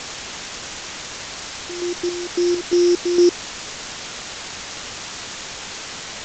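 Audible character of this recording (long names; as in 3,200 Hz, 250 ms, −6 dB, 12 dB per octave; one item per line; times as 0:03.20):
a buzz of ramps at a fixed pitch in blocks of 8 samples
chopped level 2.2 Hz, depth 60%, duty 60%
a quantiser's noise floor 6 bits, dither triangular
G.722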